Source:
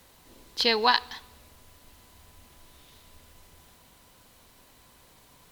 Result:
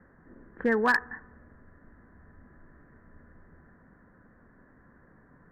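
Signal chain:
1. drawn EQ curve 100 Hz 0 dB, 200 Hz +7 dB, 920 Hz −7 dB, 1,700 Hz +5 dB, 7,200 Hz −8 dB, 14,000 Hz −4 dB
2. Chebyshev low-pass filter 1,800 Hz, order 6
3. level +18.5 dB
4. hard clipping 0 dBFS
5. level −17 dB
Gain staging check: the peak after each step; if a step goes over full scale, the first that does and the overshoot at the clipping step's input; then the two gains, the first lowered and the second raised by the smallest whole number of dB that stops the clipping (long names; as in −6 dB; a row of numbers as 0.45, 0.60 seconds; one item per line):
−5.5, −11.5, +7.0, 0.0, −17.0 dBFS
step 3, 7.0 dB
step 3 +11.5 dB, step 5 −10 dB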